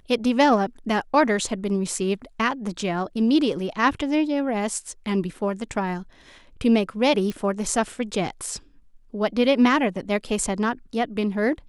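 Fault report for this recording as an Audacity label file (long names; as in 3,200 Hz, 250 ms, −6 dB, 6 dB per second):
7.300000	7.300000	click −17 dBFS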